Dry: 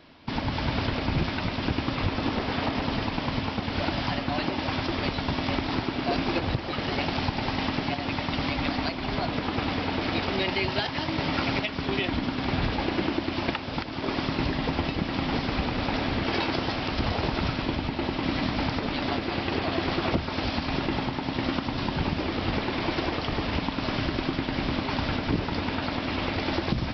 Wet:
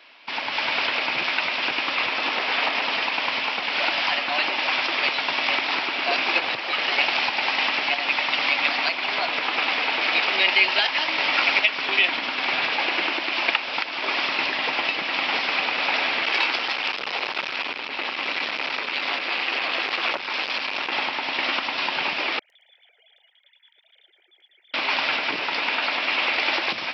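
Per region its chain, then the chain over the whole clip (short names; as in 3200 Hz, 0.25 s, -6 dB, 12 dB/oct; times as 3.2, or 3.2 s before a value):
16.25–20.92 bell 650 Hz -6 dB 0.24 oct + core saturation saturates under 760 Hz
22.39–24.74 sine-wave speech + inverse Chebyshev high-pass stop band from 2900 Hz + feedback echo 0.111 s, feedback 30%, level -10.5 dB
whole clip: HPF 710 Hz 12 dB/oct; bell 2500 Hz +8.5 dB 0.69 oct; AGC gain up to 3.5 dB; gain +2.5 dB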